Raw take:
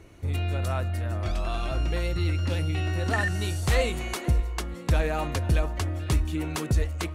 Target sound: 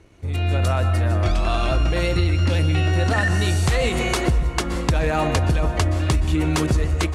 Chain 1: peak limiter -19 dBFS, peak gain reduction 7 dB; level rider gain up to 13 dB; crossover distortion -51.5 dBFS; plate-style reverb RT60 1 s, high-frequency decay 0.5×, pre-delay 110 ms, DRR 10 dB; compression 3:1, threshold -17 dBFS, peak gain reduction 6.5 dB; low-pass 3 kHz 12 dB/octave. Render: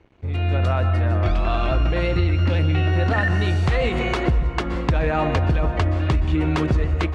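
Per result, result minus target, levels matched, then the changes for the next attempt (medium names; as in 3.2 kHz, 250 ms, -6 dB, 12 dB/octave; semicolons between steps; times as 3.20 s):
8 kHz band -15.0 dB; crossover distortion: distortion +10 dB
change: low-pass 10 kHz 12 dB/octave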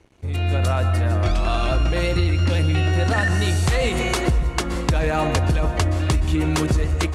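crossover distortion: distortion +10 dB
change: crossover distortion -61.5 dBFS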